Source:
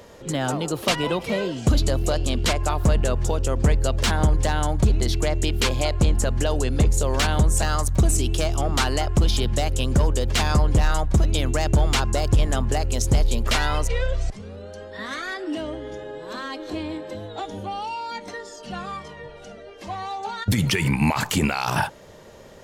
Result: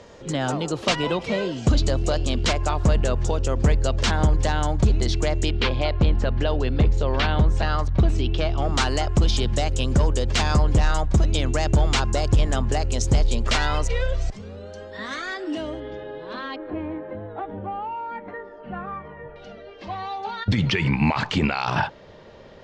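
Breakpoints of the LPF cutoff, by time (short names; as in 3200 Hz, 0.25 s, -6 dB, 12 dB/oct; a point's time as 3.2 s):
LPF 24 dB/oct
7200 Hz
from 5.51 s 4100 Hz
from 8.62 s 7700 Hz
from 15.8 s 4100 Hz
from 16.56 s 2000 Hz
from 19.36 s 4700 Hz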